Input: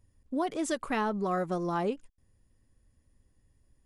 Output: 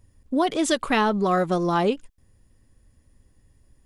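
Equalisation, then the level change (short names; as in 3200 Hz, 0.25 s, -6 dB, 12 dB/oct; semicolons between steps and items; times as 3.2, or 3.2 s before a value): dynamic EQ 3500 Hz, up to +7 dB, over -55 dBFS, Q 1.6; +8.5 dB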